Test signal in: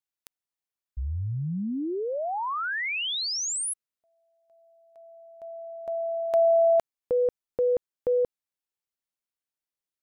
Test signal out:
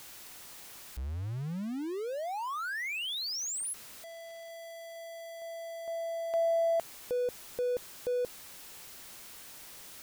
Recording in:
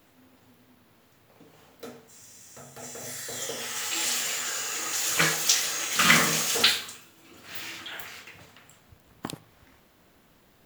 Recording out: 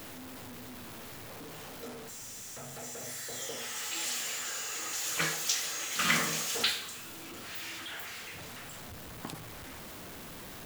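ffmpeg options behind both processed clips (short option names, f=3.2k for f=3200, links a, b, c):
-af "aeval=exprs='val(0)+0.5*0.0282*sgn(val(0))':c=same,volume=-9dB"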